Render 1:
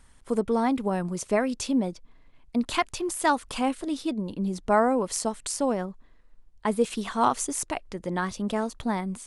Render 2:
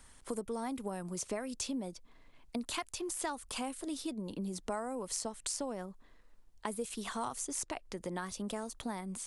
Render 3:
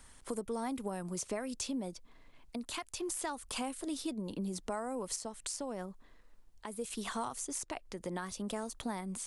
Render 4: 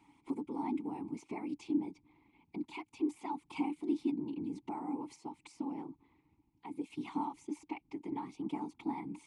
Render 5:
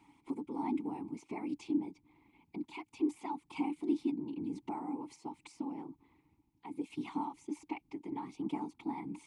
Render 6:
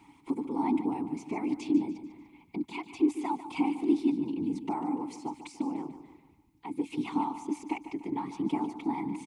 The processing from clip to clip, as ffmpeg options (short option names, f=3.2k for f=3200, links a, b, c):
-filter_complex "[0:a]bass=f=250:g=-4,treble=f=4k:g=4,acrossover=split=120|7900[a][b][c];[a]acompressor=threshold=-54dB:ratio=4[d];[b]acompressor=threshold=-38dB:ratio=4[e];[c]acompressor=threshold=-46dB:ratio=4[f];[d][e][f]amix=inputs=3:normalize=0"
-af "alimiter=level_in=2.5dB:limit=-24dB:level=0:latency=1:release=261,volume=-2.5dB,volume=1dB"
-filter_complex "[0:a]afftfilt=real='hypot(re,im)*cos(2*PI*random(0))':imag='hypot(re,im)*sin(2*PI*random(1))':win_size=512:overlap=0.75,asplit=3[a][b][c];[a]bandpass=f=300:t=q:w=8,volume=0dB[d];[b]bandpass=f=870:t=q:w=8,volume=-6dB[e];[c]bandpass=f=2.24k:t=q:w=8,volume=-9dB[f];[d][e][f]amix=inputs=3:normalize=0,volume=16dB"
-af "tremolo=f=1.3:d=0.28,volume=1.5dB"
-af "aecho=1:1:147|294|441|588:0.251|0.111|0.0486|0.0214,volume=7dB"